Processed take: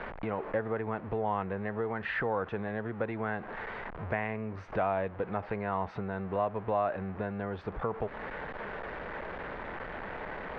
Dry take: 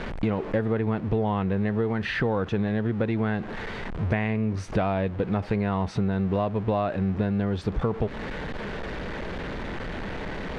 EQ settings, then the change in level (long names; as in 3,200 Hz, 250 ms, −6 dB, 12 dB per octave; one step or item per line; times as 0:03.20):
high-frequency loss of the air 150 metres
three-way crossover with the lows and the highs turned down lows −13 dB, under 510 Hz, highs −14 dB, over 2,300 Hz
0.0 dB